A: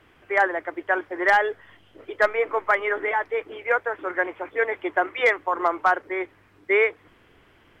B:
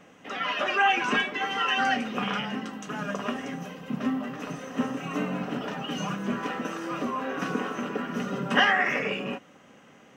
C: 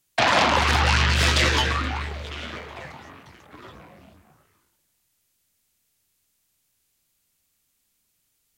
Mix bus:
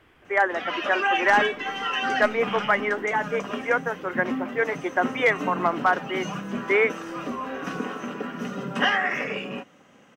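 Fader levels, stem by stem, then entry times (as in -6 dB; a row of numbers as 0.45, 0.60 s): -1.0 dB, -1.0 dB, off; 0.00 s, 0.25 s, off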